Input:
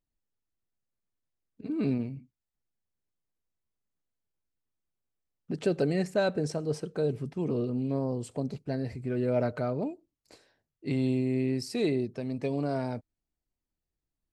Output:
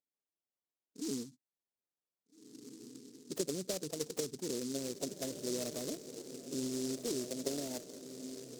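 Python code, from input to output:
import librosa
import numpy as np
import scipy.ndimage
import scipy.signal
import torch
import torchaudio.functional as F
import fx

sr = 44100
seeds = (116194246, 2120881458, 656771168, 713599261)

p1 = fx.wiener(x, sr, points=15)
p2 = fx.highpass(p1, sr, hz=41.0, slope=6)
p3 = fx.spec_gate(p2, sr, threshold_db=-20, keep='strong')
p4 = fx.weighting(p3, sr, curve='A')
p5 = fx.env_lowpass_down(p4, sr, base_hz=320.0, full_db=-31.5)
p6 = fx.low_shelf(p5, sr, hz=140.0, db=-9.5)
p7 = fx.level_steps(p6, sr, step_db=12)
p8 = p6 + (p7 * librosa.db_to_amplitude(-3.0))
p9 = fx.stretch_vocoder(p8, sr, factor=0.6)
p10 = p9 + fx.echo_diffused(p9, sr, ms=1767, feedback_pct=56, wet_db=-9, dry=0)
y = fx.noise_mod_delay(p10, sr, seeds[0], noise_hz=5900.0, depth_ms=0.19)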